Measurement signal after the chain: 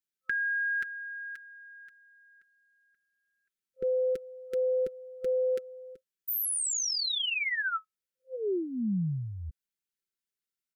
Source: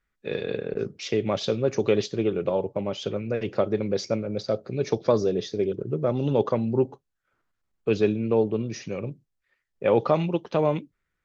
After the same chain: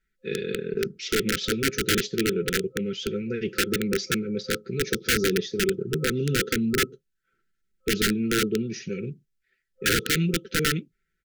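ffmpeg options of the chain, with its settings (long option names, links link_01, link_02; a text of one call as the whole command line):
ffmpeg -i in.wav -af "aecho=1:1:5.2:0.55,aeval=exprs='(mod(5.96*val(0)+1,2)-1)/5.96':channel_layout=same,afftfilt=real='re*(1-between(b*sr/4096,520,1300))':imag='im*(1-between(b*sr/4096,520,1300))':win_size=4096:overlap=0.75" out.wav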